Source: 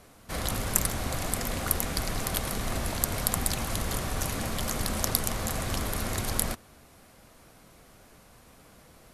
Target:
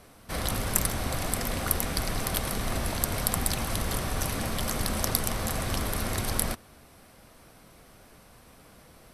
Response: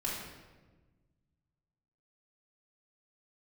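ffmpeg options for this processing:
-af "bandreject=frequency=6900:width=8.8,acontrast=41,volume=-4.5dB"

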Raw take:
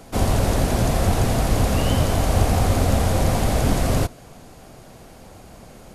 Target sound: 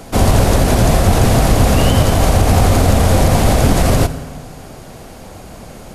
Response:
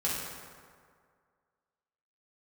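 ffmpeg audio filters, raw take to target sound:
-filter_complex "[0:a]asplit=2[link_01][link_02];[1:a]atrim=start_sample=2205,adelay=69[link_03];[link_02][link_03]afir=irnorm=-1:irlink=0,volume=-22dB[link_04];[link_01][link_04]amix=inputs=2:normalize=0,alimiter=level_in=10dB:limit=-1dB:release=50:level=0:latency=1,volume=-1dB"

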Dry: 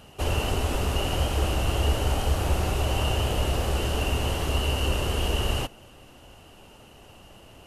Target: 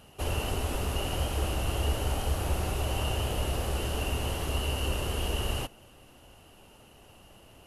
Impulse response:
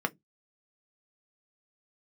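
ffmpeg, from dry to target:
-af "equalizer=frequency=11000:width_type=o:width=0.24:gain=8,volume=-5dB"

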